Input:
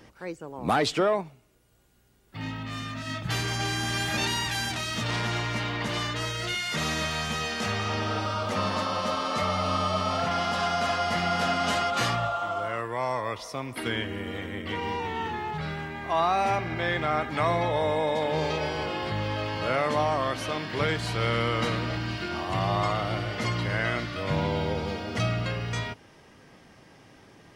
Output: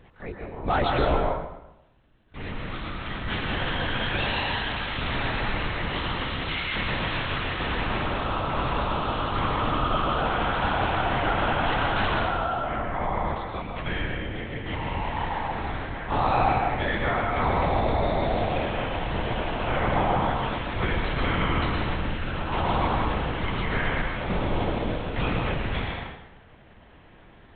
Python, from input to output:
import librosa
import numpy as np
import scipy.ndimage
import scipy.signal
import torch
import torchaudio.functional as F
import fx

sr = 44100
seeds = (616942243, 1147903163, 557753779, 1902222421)

y = fx.lpc_vocoder(x, sr, seeds[0], excitation='whisper', order=8)
y = fx.rev_plate(y, sr, seeds[1], rt60_s=0.9, hf_ratio=0.8, predelay_ms=105, drr_db=1.5)